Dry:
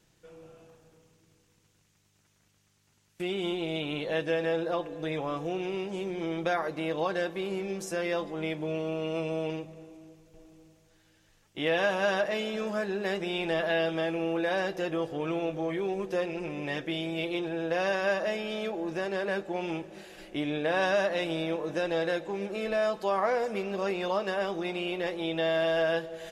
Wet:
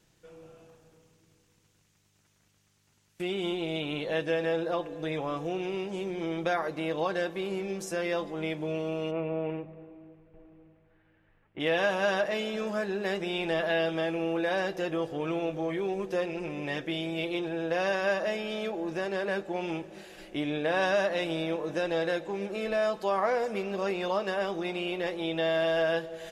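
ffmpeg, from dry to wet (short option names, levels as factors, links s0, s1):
-filter_complex "[0:a]asplit=3[s0][s1][s2];[s0]afade=t=out:st=9.1:d=0.02[s3];[s1]lowpass=f=2300:w=0.5412,lowpass=f=2300:w=1.3066,afade=t=in:st=9.1:d=0.02,afade=t=out:st=11.59:d=0.02[s4];[s2]afade=t=in:st=11.59:d=0.02[s5];[s3][s4][s5]amix=inputs=3:normalize=0"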